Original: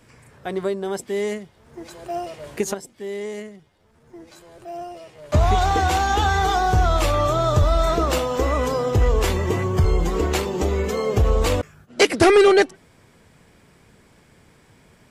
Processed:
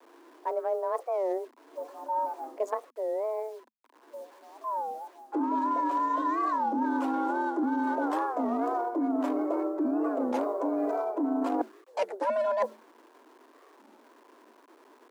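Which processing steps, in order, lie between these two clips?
adaptive Wiener filter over 15 samples
tilt shelving filter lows +7.5 dB, about 810 Hz
noise reduction from a noise print of the clip's start 6 dB
bit reduction 9 bits
frequency shifter +220 Hz
thirty-one-band graphic EQ 200 Hz −10 dB, 1,000 Hz +12 dB, 1,600 Hz +5 dB
reversed playback
downward compressor 10 to 1, threshold −20 dBFS, peak gain reduction 17.5 dB
reversed playback
wow of a warped record 33 1/3 rpm, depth 250 cents
level −5.5 dB

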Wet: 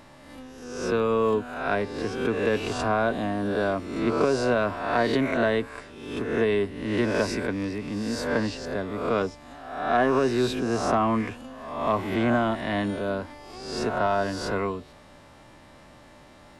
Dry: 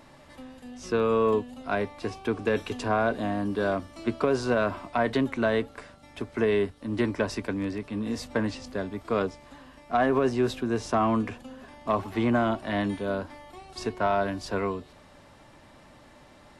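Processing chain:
peak hold with a rise ahead of every peak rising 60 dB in 0.90 s
0:13.96–0:14.59: notch filter 2,300 Hz, Q 8.3

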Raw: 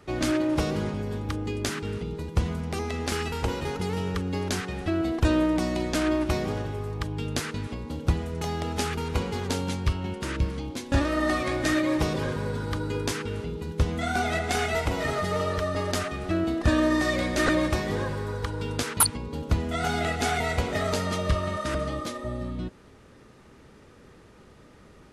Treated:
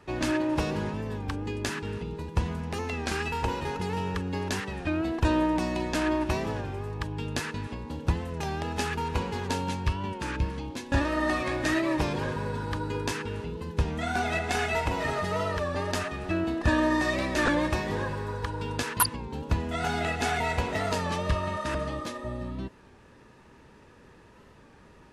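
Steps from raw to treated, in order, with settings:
high-shelf EQ 11,000 Hz −5.5 dB
hollow resonant body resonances 940/1,700/2,600 Hz, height 10 dB, ringing for 35 ms
wow of a warped record 33 1/3 rpm, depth 100 cents
level −2.5 dB

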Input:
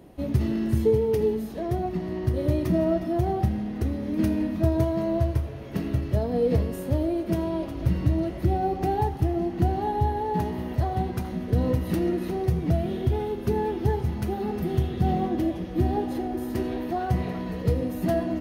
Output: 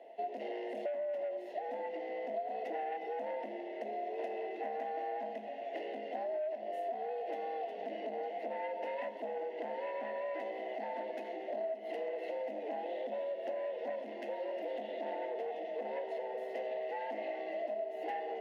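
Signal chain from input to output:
soft clipping −24.5 dBFS, distortion −9 dB
formant filter e
frequency shifter +140 Hz
downward compressor 12 to 1, threshold −43 dBFS, peak gain reduction 12.5 dB
level +8.5 dB

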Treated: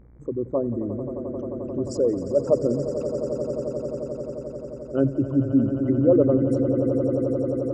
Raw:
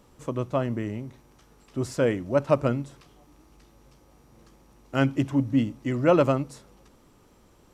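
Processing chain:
spectral envelope exaggerated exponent 3
hum with harmonics 60 Hz, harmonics 39, −54 dBFS −8 dB per octave
echo that builds up and dies away 88 ms, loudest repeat 8, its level −12.5 dB
level +1.5 dB

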